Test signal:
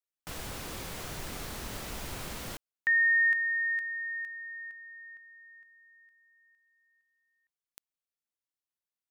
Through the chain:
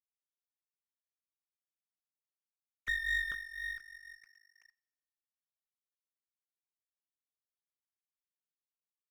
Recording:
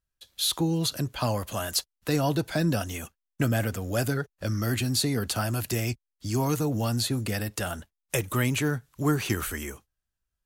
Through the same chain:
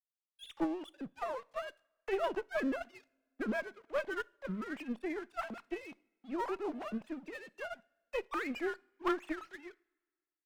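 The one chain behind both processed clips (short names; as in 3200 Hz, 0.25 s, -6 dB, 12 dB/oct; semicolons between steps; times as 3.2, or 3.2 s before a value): sine-wave speech; dynamic EQ 810 Hz, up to +5 dB, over -38 dBFS, Q 0.73; crossover distortion -38.5 dBFS; tube stage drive 19 dB, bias 0.6; two-slope reverb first 0.46 s, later 1.8 s, from -18 dB, DRR 18 dB; upward expander 1.5:1, over -35 dBFS; gain -6.5 dB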